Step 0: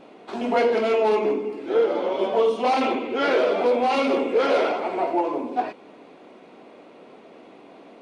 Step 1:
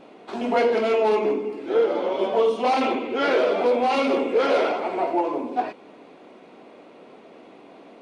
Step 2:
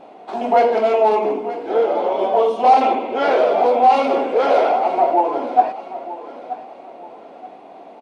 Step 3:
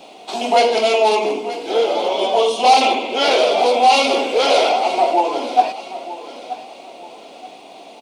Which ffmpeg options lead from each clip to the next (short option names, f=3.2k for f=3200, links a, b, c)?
-af anull
-af "equalizer=f=750:t=o:w=0.79:g=12.5,aecho=1:1:929|1858|2787:0.188|0.064|0.0218,volume=-1dB"
-filter_complex "[0:a]acrossover=split=140[a][b];[a]acompressor=threshold=-59dB:ratio=6[c];[b]aexciter=amount=5.1:drive=7.8:freq=2.5k[d];[c][d]amix=inputs=2:normalize=0"